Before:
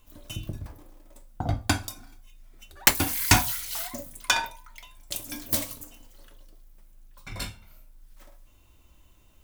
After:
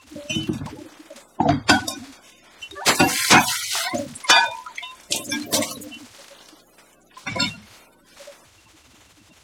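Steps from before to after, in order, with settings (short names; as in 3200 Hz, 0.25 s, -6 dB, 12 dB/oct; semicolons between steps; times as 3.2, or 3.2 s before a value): bin magnitudes rounded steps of 30 dB; sine folder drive 15 dB, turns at -1 dBFS; BPF 180–7200 Hz; gain -4.5 dB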